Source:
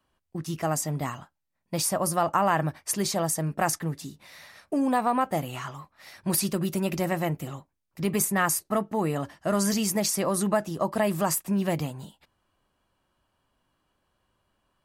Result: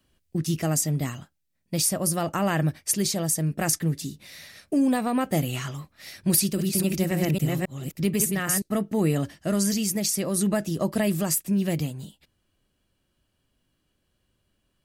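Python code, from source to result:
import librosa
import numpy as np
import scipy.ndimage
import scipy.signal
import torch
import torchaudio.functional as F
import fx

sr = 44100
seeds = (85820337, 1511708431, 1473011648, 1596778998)

y = fx.reverse_delay(x, sr, ms=271, wet_db=-4.0, at=(6.3, 8.62))
y = fx.peak_eq(y, sr, hz=970.0, db=-14.5, octaves=1.4)
y = fx.rider(y, sr, range_db=4, speed_s=0.5)
y = y * 10.0 ** (4.5 / 20.0)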